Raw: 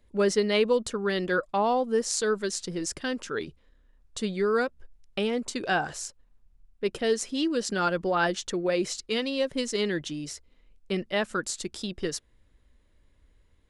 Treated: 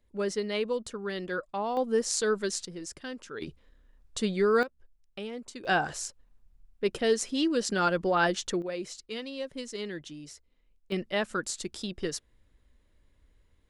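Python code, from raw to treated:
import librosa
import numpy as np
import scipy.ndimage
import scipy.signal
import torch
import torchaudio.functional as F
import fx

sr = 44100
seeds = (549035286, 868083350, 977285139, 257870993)

y = fx.gain(x, sr, db=fx.steps((0.0, -7.0), (1.77, -1.0), (2.65, -8.5), (3.42, 1.0), (4.63, -10.5), (5.65, 0.0), (8.62, -9.0), (10.92, -2.0)))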